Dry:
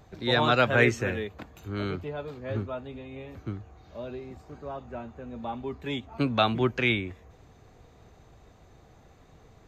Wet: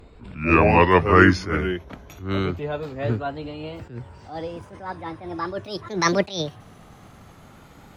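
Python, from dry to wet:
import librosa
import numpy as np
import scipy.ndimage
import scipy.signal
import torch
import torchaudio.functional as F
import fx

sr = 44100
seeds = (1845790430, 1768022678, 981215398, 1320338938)

y = fx.speed_glide(x, sr, from_pct=58, to_pct=185)
y = fx.attack_slew(y, sr, db_per_s=130.0)
y = y * 10.0 ** (7.5 / 20.0)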